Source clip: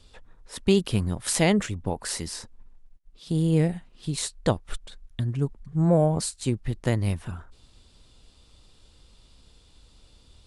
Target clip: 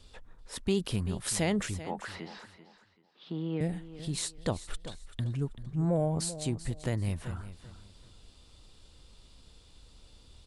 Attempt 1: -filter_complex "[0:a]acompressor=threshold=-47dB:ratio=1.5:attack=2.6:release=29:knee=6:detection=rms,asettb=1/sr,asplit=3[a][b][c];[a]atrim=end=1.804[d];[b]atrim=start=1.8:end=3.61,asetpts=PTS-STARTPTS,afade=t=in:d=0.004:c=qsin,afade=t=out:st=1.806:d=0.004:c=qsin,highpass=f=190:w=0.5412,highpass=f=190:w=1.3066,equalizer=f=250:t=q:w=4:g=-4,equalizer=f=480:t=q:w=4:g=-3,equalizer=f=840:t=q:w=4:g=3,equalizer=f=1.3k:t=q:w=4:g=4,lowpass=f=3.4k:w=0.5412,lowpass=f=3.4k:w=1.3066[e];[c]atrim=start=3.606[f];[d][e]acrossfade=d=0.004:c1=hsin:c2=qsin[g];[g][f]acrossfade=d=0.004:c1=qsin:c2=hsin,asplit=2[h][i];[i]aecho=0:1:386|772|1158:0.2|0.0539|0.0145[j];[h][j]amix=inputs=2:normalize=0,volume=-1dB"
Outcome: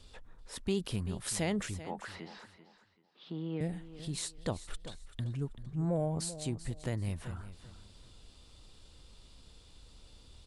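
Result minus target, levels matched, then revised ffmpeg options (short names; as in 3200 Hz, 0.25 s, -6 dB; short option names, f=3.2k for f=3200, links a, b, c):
compressor: peak gain reduction +4 dB
-filter_complex "[0:a]acompressor=threshold=-35.5dB:ratio=1.5:attack=2.6:release=29:knee=6:detection=rms,asettb=1/sr,asplit=3[a][b][c];[a]atrim=end=1.804[d];[b]atrim=start=1.8:end=3.61,asetpts=PTS-STARTPTS,afade=t=in:d=0.004:c=qsin,afade=t=out:st=1.806:d=0.004:c=qsin,highpass=f=190:w=0.5412,highpass=f=190:w=1.3066,equalizer=f=250:t=q:w=4:g=-4,equalizer=f=480:t=q:w=4:g=-3,equalizer=f=840:t=q:w=4:g=3,equalizer=f=1.3k:t=q:w=4:g=4,lowpass=f=3.4k:w=0.5412,lowpass=f=3.4k:w=1.3066[e];[c]atrim=start=3.606[f];[d][e]acrossfade=d=0.004:c1=hsin:c2=qsin[g];[g][f]acrossfade=d=0.004:c1=qsin:c2=hsin,asplit=2[h][i];[i]aecho=0:1:386|772|1158:0.2|0.0539|0.0145[j];[h][j]amix=inputs=2:normalize=0,volume=-1dB"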